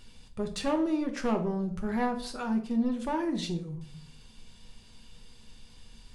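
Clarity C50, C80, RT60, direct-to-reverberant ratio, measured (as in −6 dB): 10.5 dB, 14.5 dB, 0.60 s, 3.5 dB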